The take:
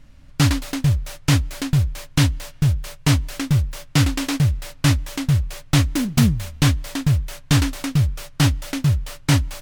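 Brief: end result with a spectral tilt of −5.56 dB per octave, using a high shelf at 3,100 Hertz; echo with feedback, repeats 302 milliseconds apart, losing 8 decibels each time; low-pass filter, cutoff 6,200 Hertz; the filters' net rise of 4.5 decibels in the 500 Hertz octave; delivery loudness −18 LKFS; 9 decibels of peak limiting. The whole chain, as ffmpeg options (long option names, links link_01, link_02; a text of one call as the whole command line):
ffmpeg -i in.wav -af "lowpass=6200,equalizer=frequency=500:width_type=o:gain=5.5,highshelf=frequency=3100:gain=3.5,alimiter=limit=-12.5dB:level=0:latency=1,aecho=1:1:302|604|906|1208|1510:0.398|0.159|0.0637|0.0255|0.0102,volume=5.5dB" out.wav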